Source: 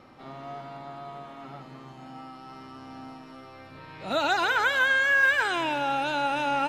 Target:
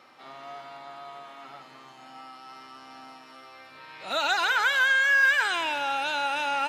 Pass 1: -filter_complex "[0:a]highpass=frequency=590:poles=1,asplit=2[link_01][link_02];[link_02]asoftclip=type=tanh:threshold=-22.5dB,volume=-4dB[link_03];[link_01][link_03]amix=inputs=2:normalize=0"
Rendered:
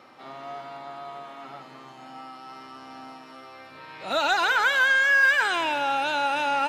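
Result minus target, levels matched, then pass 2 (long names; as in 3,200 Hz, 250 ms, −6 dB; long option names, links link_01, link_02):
500 Hz band +3.0 dB
-filter_complex "[0:a]highpass=frequency=1400:poles=1,asplit=2[link_01][link_02];[link_02]asoftclip=type=tanh:threshold=-22.5dB,volume=-4dB[link_03];[link_01][link_03]amix=inputs=2:normalize=0"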